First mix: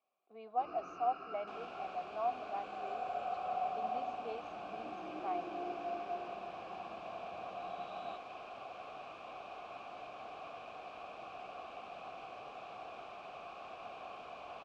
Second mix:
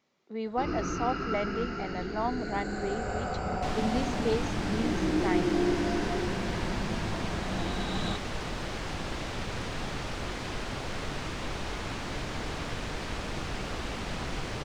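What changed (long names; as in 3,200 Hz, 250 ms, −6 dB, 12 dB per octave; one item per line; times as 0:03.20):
second sound: entry +2.15 s
master: remove formant filter a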